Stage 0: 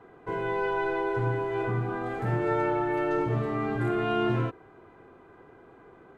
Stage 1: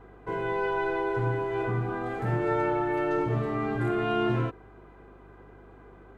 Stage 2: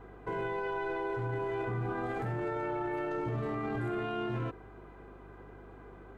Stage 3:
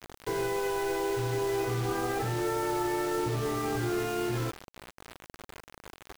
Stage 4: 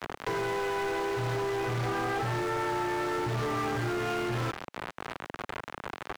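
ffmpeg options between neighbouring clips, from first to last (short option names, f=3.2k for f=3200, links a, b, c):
-af "aeval=exprs='val(0)+0.00224*(sin(2*PI*50*n/s)+sin(2*PI*2*50*n/s)/2+sin(2*PI*3*50*n/s)/3+sin(2*PI*4*50*n/s)/4+sin(2*PI*5*50*n/s)/5)':c=same"
-af "alimiter=level_in=3.5dB:limit=-24dB:level=0:latency=1:release=17,volume=-3.5dB"
-af "aecho=1:1:2.4:0.38,acrusher=bits=6:mix=0:aa=0.000001,volume=3dB"
-filter_complex "[0:a]acrossover=split=200[a][b];[b]acompressor=threshold=-47dB:ratio=5[c];[a][c]amix=inputs=2:normalize=0,asplit=2[d][e];[e]highpass=f=720:p=1,volume=27dB,asoftclip=type=tanh:threshold=-25dB[f];[d][f]amix=inputs=2:normalize=0,lowpass=f=1.1k:p=1,volume=-6dB,tiltshelf=f=760:g=-5,volume=5.5dB"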